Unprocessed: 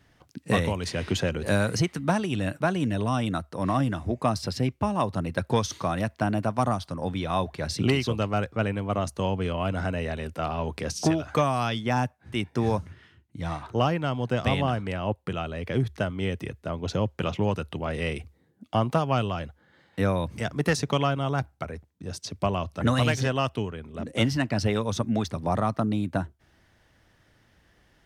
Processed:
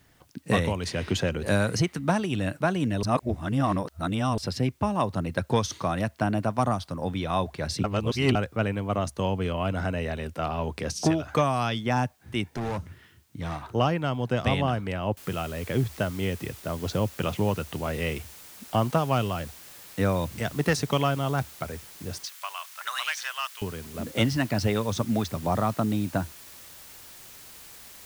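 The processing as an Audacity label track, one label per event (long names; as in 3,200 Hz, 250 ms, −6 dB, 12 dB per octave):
3.030000	4.380000	reverse
7.840000	8.350000	reverse
12.540000	13.560000	hard clipping −27.5 dBFS
15.170000	15.170000	noise floor change −68 dB −47 dB
22.250000	23.620000	high-pass filter 1,100 Hz 24 dB per octave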